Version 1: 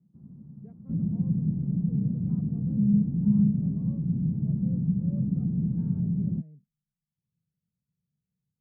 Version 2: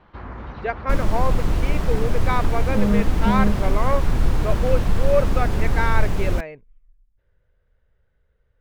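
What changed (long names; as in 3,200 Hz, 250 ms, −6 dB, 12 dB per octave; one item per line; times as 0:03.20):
speech: add low-pass filter 2,200 Hz
second sound −6.5 dB
master: remove flat-topped band-pass 170 Hz, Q 2.4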